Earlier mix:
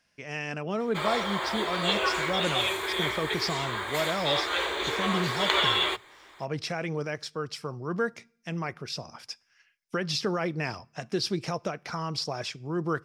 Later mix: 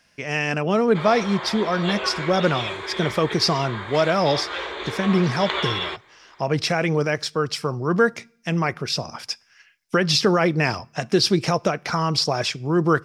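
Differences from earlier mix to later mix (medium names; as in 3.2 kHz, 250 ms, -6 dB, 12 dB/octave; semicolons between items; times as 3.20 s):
speech +10.5 dB; background: add distance through air 110 m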